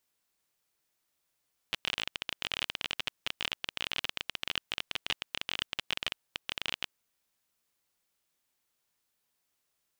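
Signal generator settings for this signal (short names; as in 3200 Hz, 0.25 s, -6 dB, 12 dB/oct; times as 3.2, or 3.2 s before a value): random clicks 24/s -14 dBFS 5.18 s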